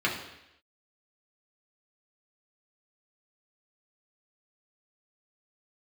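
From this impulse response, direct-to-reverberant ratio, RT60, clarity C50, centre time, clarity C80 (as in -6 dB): -4.0 dB, 0.85 s, 6.0 dB, 35 ms, 9.0 dB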